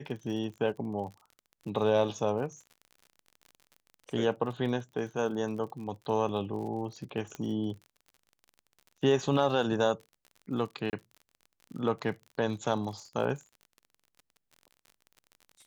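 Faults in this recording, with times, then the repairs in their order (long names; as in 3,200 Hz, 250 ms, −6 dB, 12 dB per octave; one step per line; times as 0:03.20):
surface crackle 45 per second −41 dBFS
0:07.35: click −24 dBFS
0:10.90–0:10.93: drop-out 29 ms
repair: click removal
repair the gap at 0:10.90, 29 ms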